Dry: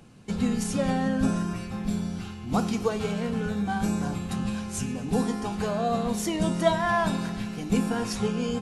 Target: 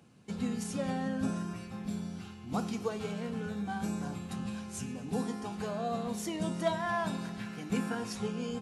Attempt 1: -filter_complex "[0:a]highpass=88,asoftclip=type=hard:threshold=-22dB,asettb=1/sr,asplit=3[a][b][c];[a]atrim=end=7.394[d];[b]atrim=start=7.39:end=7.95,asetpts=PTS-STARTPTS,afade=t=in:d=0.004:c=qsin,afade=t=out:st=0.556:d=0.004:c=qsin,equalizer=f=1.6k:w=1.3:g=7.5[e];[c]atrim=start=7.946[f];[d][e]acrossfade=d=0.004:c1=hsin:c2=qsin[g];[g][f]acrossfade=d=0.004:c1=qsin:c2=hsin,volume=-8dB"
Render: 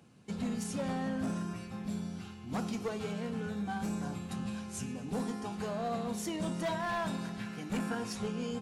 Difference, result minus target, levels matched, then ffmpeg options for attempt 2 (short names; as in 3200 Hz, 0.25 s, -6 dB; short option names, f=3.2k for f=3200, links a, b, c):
hard clip: distortion +22 dB
-filter_complex "[0:a]highpass=88,asoftclip=type=hard:threshold=-12.5dB,asettb=1/sr,asplit=3[a][b][c];[a]atrim=end=7.394[d];[b]atrim=start=7.39:end=7.95,asetpts=PTS-STARTPTS,afade=t=in:d=0.004:c=qsin,afade=t=out:st=0.556:d=0.004:c=qsin,equalizer=f=1.6k:w=1.3:g=7.5[e];[c]atrim=start=7.946[f];[d][e]acrossfade=d=0.004:c1=hsin:c2=qsin[g];[g][f]acrossfade=d=0.004:c1=qsin:c2=hsin,volume=-8dB"